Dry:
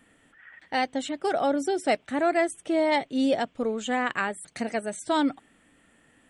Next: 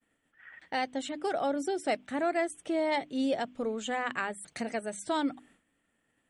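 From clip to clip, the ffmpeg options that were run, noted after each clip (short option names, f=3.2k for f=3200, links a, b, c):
-filter_complex "[0:a]agate=range=-33dB:threshold=-51dB:ratio=3:detection=peak,bandreject=f=50:t=h:w=6,bandreject=f=100:t=h:w=6,bandreject=f=150:t=h:w=6,bandreject=f=200:t=h:w=6,bandreject=f=250:t=h:w=6,bandreject=f=300:t=h:w=6,asplit=2[a][b];[b]acompressor=threshold=-34dB:ratio=6,volume=0dB[c];[a][c]amix=inputs=2:normalize=0,volume=-7.5dB"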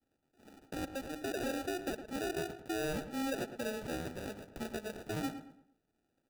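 -filter_complex "[0:a]alimiter=limit=-23.5dB:level=0:latency=1:release=63,acrusher=samples=41:mix=1:aa=0.000001,asplit=2[a][b];[b]adelay=111,lowpass=f=2.2k:p=1,volume=-10dB,asplit=2[c][d];[d]adelay=111,lowpass=f=2.2k:p=1,volume=0.37,asplit=2[e][f];[f]adelay=111,lowpass=f=2.2k:p=1,volume=0.37,asplit=2[g][h];[h]adelay=111,lowpass=f=2.2k:p=1,volume=0.37[i];[c][e][g][i]amix=inputs=4:normalize=0[j];[a][j]amix=inputs=2:normalize=0,volume=-5.5dB"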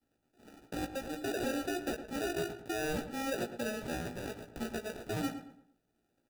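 -filter_complex "[0:a]asplit=2[a][b];[b]adelay=17,volume=-6dB[c];[a][c]amix=inputs=2:normalize=0,volume=1dB"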